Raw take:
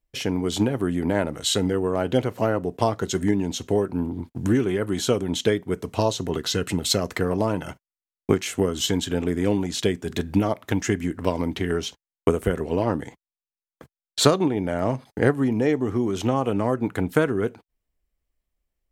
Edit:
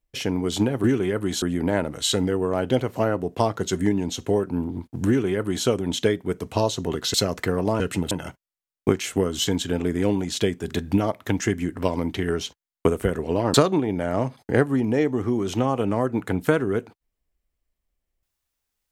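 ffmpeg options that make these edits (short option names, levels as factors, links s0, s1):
-filter_complex "[0:a]asplit=7[s0][s1][s2][s3][s4][s5][s6];[s0]atrim=end=0.842[s7];[s1]atrim=start=4.498:end=5.082[s8];[s2]atrim=start=0.838:end=6.562[s9];[s3]atrim=start=6.868:end=7.532[s10];[s4]atrim=start=6.558:end=6.872[s11];[s5]atrim=start=7.528:end=12.962[s12];[s6]atrim=start=14.218[s13];[s7][s8]acrossfade=d=0.004:c1=hsin:c2=hsin[s14];[s14][s9]acrossfade=d=0.004:c1=hsin:c2=hsin[s15];[s15][s10]acrossfade=d=0.004:c1=hsin:c2=hsin[s16];[s16][s11]acrossfade=d=0.004:c1=hsin:c2=hsin[s17];[s17][s12]acrossfade=d=0.004:c1=hsin:c2=hsin[s18];[s18][s13]acrossfade=d=0.004:c1=hsin:c2=hsin"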